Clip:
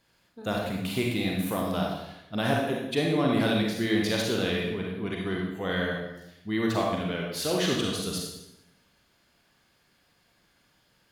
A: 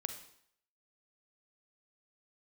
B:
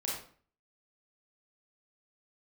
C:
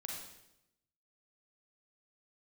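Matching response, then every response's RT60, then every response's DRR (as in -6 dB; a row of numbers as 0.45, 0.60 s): C; 0.65, 0.45, 0.85 s; 7.0, -5.0, -1.5 dB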